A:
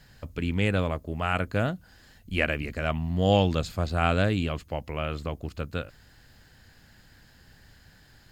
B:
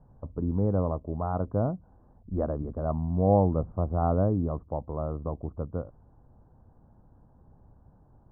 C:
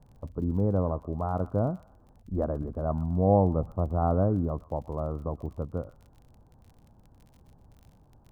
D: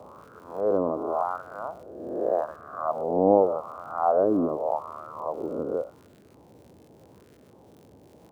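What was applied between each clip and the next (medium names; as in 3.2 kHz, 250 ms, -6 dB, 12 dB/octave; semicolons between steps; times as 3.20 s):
steep low-pass 1.1 kHz 48 dB/octave
crackle 26 per s -45 dBFS; feedback echo behind a high-pass 123 ms, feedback 32%, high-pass 1.5 kHz, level -10 dB
reverse spectral sustain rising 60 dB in 1.18 s; LFO high-pass sine 0.85 Hz 290–1500 Hz; band noise 66–530 Hz -54 dBFS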